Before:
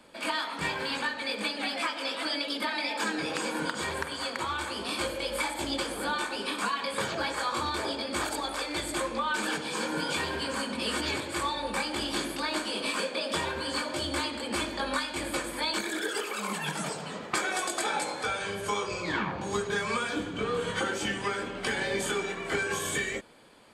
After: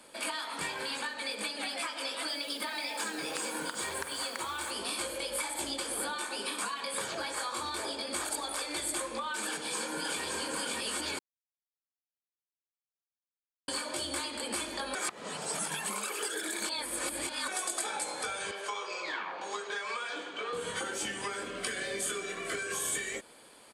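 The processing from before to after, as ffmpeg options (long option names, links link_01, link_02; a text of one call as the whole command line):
ffmpeg -i in.wav -filter_complex "[0:a]asettb=1/sr,asplit=3[link_01][link_02][link_03];[link_01]atrim=end=2.284[link_04];[link_02]atrim=start=2.28:end=4.71,asetpts=PTS-STARTPTS,afade=type=in:duration=0.004:curve=qsin,afade=type=out:start_time=2.426:duration=0.004:curve=qsin,acrusher=bits=7:mix=0:aa=0.5[link_05];[link_03]atrim=start=4.706[link_06];[link_04][link_05]acrossfade=duration=0.004:curve1=hsin:curve2=qsin[link_07];[link_07][link_06]acrossfade=duration=0.004:curve1=qsin:curve2=hsin,asplit=2[link_08][link_09];[link_09]afade=type=in:start_time=9.47:duration=0.01,afade=type=out:start_time=10.23:duration=0.01,aecho=0:1:570|1140|1710|2280|2850|3420|3990:0.841395|0.420698|0.210349|0.105174|0.0525872|0.0262936|0.0131468[link_10];[link_08][link_10]amix=inputs=2:normalize=0,asettb=1/sr,asplit=3[link_11][link_12][link_13];[link_11]atrim=end=18.514[link_14];[link_12]atrim=start=18.51:end=20.53,asetpts=PTS-STARTPTS,afade=type=in:duration=0.004:curve=qsin,afade=type=out:start_time=2.016:duration=0.004:curve=qsin,highpass=520,lowpass=4600[link_15];[link_13]atrim=start=20.526[link_16];[link_14][link_15]acrossfade=duration=0.004:curve1=hsin:curve2=qsin[link_17];[link_17][link_16]acrossfade=duration=0.004:curve1=qsin:curve2=hsin,asettb=1/sr,asplit=3[link_18][link_19][link_20];[link_18]atrim=end=21.444[link_21];[link_19]atrim=start=21.44:end=22.75,asetpts=PTS-STARTPTS,afade=type=in:duration=0.004:curve=qsin,afade=type=out:start_time=1.306:duration=0.004:curve=qsin,asuperstop=centerf=870:order=20:qfactor=4.3[link_22];[link_20]atrim=start=22.746[link_23];[link_21][link_22]acrossfade=duration=0.004:curve1=hsin:curve2=qsin[link_24];[link_24][link_23]acrossfade=duration=0.004:curve1=qsin:curve2=hsin,asplit=5[link_25][link_26][link_27][link_28][link_29];[link_25]atrim=end=11.19,asetpts=PTS-STARTPTS,afade=type=out:start_time=11.186:duration=0.004:curve=hsin[link_30];[link_26]atrim=start=11.19:end=13.68,asetpts=PTS-STARTPTS,volume=0[link_31];[link_27]atrim=start=13.68:end=14.952,asetpts=PTS-STARTPTS,afade=type=in:duration=0.004:curve=hsin[link_32];[link_28]atrim=start=14.948:end=17.482,asetpts=PTS-STARTPTS,areverse[link_33];[link_29]atrim=start=17.478[link_34];[link_30][link_31][link_32]concat=n=3:v=0:a=1[link_35];[link_35][link_33]acrossfade=duration=0.004:curve1=hsin:curve2=hsin[link_36];[link_36][link_34]acrossfade=duration=0.004:curve1=hsin:curve2=hsin,bass=frequency=250:gain=-7,treble=frequency=4000:gain=4,acompressor=threshold=-34dB:ratio=4,equalizer=frequency=9700:width=1.8:gain=8" out.wav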